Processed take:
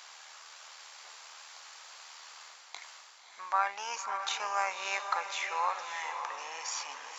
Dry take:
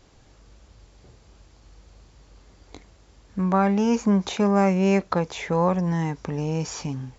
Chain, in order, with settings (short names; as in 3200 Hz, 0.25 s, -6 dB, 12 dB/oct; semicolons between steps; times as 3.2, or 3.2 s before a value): HPF 920 Hz 24 dB/oct; reverse; upward compressor, threshold -36 dBFS; reverse; AM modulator 78 Hz, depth 25%; diffused feedback echo 0.583 s, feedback 40%, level -7 dB